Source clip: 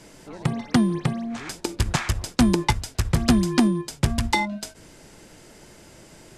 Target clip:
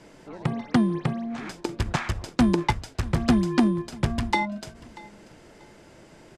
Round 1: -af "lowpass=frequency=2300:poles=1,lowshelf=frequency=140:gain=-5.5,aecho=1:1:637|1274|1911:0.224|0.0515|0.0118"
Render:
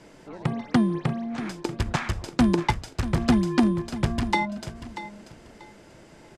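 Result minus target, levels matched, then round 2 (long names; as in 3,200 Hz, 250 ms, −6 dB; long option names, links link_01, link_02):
echo-to-direct +8 dB
-af "lowpass=frequency=2300:poles=1,lowshelf=frequency=140:gain=-5.5,aecho=1:1:637|1274:0.0891|0.0205"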